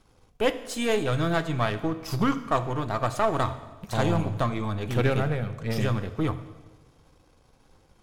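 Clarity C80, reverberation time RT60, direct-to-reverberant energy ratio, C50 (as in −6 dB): 14.5 dB, 1.3 s, 10.5 dB, 13.0 dB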